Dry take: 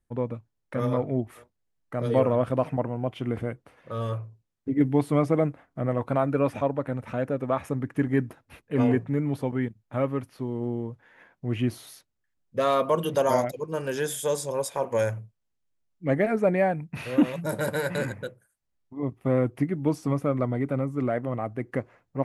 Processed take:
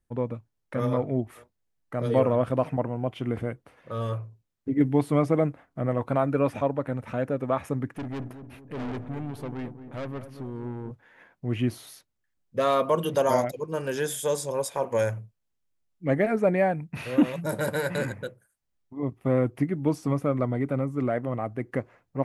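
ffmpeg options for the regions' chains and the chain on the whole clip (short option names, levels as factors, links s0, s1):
-filter_complex "[0:a]asettb=1/sr,asplit=3[s0][s1][s2];[s0]atrim=end=7.954[s3];[s1]atrim=start=7.95:end=10.91,asetpts=PTS-STARTPTS,afade=t=in:d=0.004:c=qsin,afade=t=out:st=2.956:d=0.004:c=qsin,aeval=exprs='(tanh(35.5*val(0)+0.4)-tanh(0.4))/35.5':c=same,asplit=2[s4][s5];[s5]adelay=225,lowpass=f=850:p=1,volume=0.335,asplit=2[s6][s7];[s7]adelay=225,lowpass=f=850:p=1,volume=0.51,asplit=2[s8][s9];[s9]adelay=225,lowpass=f=850:p=1,volume=0.51,asplit=2[s10][s11];[s11]adelay=225,lowpass=f=850:p=1,volume=0.51,asplit=2[s12][s13];[s13]adelay=225,lowpass=f=850:p=1,volume=0.51,asplit=2[s14][s15];[s15]adelay=225,lowpass=f=850:p=1,volume=0.51[s16];[s4][s6][s8][s10][s12][s14][s16]amix=inputs=7:normalize=0,atrim=end_sample=130536[s17];[s2]atrim=start=10.906[s18];[s3][s17]acrossfade=d=0.004:c1=hsin:c2=qsin[s19];[s19][s18]acrossfade=d=0.004:c1=qsin:c2=hsin"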